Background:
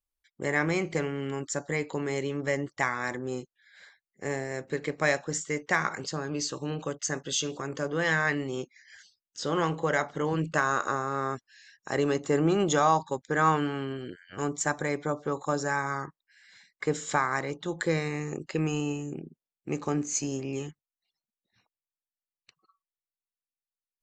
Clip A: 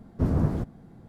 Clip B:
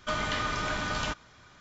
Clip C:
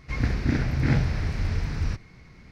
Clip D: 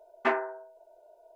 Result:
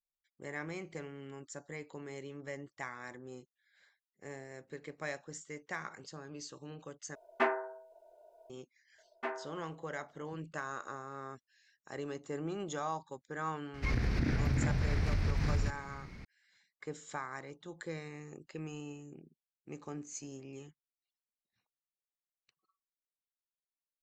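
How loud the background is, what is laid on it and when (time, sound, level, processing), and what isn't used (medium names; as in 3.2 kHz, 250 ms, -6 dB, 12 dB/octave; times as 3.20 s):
background -14.5 dB
7.15 s: replace with D -3.5 dB
8.98 s: add D -12 dB
13.74 s: add C + compression 12:1, threshold -26 dBFS
not used: A, B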